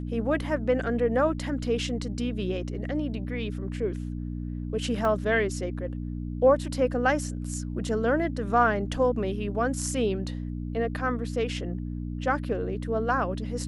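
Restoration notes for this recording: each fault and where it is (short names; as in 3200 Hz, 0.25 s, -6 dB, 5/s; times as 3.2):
hum 60 Hz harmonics 5 -33 dBFS
5.05 gap 2.3 ms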